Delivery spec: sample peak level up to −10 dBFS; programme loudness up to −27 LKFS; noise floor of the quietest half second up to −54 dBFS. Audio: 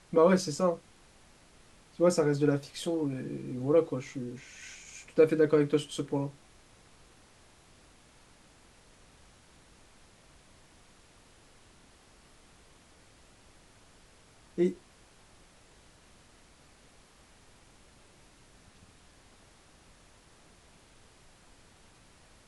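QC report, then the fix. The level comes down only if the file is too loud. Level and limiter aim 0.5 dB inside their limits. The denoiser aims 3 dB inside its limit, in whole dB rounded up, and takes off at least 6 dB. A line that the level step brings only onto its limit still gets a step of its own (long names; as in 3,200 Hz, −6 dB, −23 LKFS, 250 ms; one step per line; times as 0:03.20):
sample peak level −11.0 dBFS: in spec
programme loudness −29.0 LKFS: in spec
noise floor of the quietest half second −59 dBFS: in spec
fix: no processing needed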